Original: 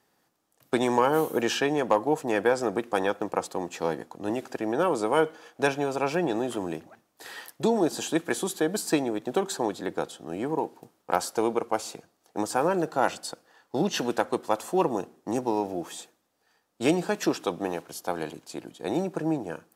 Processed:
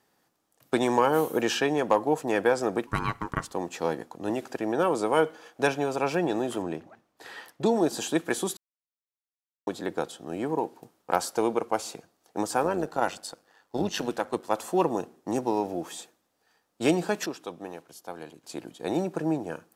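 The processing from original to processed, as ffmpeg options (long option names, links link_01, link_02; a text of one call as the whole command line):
ffmpeg -i in.wav -filter_complex "[0:a]asplit=3[link_01][link_02][link_03];[link_01]afade=type=out:start_time=2.86:duration=0.02[link_04];[link_02]aeval=exprs='val(0)*sin(2*PI*630*n/s)':channel_layout=same,afade=type=in:start_time=2.86:duration=0.02,afade=type=out:start_time=3.51:duration=0.02[link_05];[link_03]afade=type=in:start_time=3.51:duration=0.02[link_06];[link_04][link_05][link_06]amix=inputs=3:normalize=0,asettb=1/sr,asplit=3[link_07][link_08][link_09];[link_07]atrim=end=6.624[link_10];[link_08]atrim=start=6.62:end=7.66,asetpts=PTS-STARTPTS,afade=type=in:duration=0.004:curve=qsin,afade=type=out:start_time=1.036:duration=0.004:curve=qsin,lowpass=frequency=3300:poles=1[link_11];[link_09]atrim=start=7.656[link_12];[link_10][link_11]acrossfade=duration=0.004:curve1=hsin:curve2=qsin[link_13];[link_13][link_12]acrossfade=duration=0.004:curve1=qsin:curve2=hsin,asplit=3[link_14][link_15][link_16];[link_14]afade=type=out:start_time=12.62:duration=0.02[link_17];[link_15]tremolo=f=99:d=0.571,afade=type=in:start_time=12.62:duration=0.02,afade=type=out:start_time=14.53:duration=0.02[link_18];[link_16]afade=type=in:start_time=14.53:duration=0.02[link_19];[link_17][link_18][link_19]amix=inputs=3:normalize=0,asplit=5[link_20][link_21][link_22][link_23][link_24];[link_20]atrim=end=8.57,asetpts=PTS-STARTPTS,afade=type=out:start_time=8.566:duration=0.004:curve=hsin[link_25];[link_21]atrim=start=8.57:end=9.67,asetpts=PTS-STARTPTS,volume=0[link_26];[link_22]atrim=start=9.67:end=17.262,asetpts=PTS-STARTPTS,afade=type=in:duration=0.004:curve=hsin[link_27];[link_23]atrim=start=17.258:end=18.442,asetpts=PTS-STARTPTS,volume=-9dB[link_28];[link_24]atrim=start=18.438[link_29];[link_25][link_26][link_27]concat=n=3:v=0:a=1[link_30];[link_30][link_28]acrossfade=duration=0.004:curve1=hsin:curve2=hsin[link_31];[link_31][link_29]acrossfade=duration=0.004:curve1=hsin:curve2=hsin" out.wav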